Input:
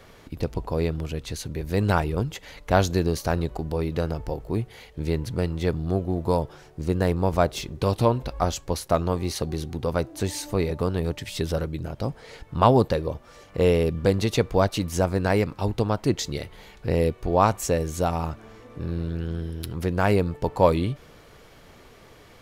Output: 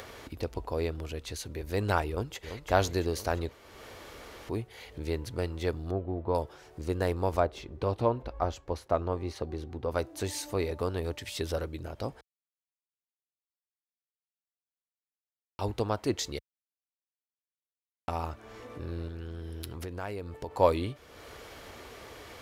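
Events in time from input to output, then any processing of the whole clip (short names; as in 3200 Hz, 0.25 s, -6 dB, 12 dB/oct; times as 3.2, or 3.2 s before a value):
2.09–2.59 echo throw 0.34 s, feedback 65%, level -9 dB
3.51–4.49 room tone
5.91–6.35 air absorption 440 m
7.4–9.91 LPF 1400 Hz 6 dB/oct
12.21–15.59 mute
16.39–18.08 mute
19.07–20.51 compressor, threshold -26 dBFS
whole clip: HPF 50 Hz; bell 160 Hz -11 dB 0.92 oct; upward compressor, threshold -33 dBFS; gain -4 dB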